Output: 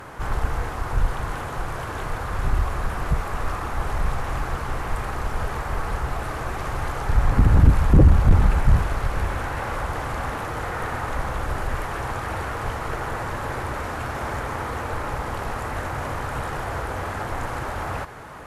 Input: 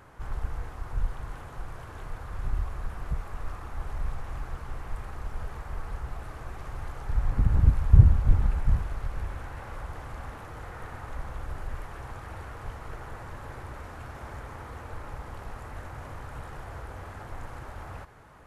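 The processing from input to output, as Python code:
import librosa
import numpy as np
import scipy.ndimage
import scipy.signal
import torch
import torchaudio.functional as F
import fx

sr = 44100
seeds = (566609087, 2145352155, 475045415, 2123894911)

p1 = fx.low_shelf(x, sr, hz=110.0, db=-8.5)
p2 = fx.fold_sine(p1, sr, drive_db=17, ceiling_db=-1.5)
y = p1 + (p2 * 10.0 ** (-8.0 / 20.0))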